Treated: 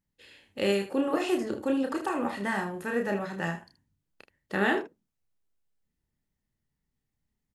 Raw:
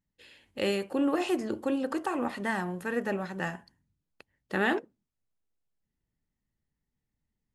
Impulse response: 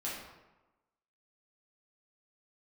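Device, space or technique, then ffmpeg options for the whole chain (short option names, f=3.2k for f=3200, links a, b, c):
slapback doubling: -filter_complex "[0:a]asplit=3[a][b][c];[b]adelay=30,volume=-5dB[d];[c]adelay=77,volume=-11dB[e];[a][d][e]amix=inputs=3:normalize=0"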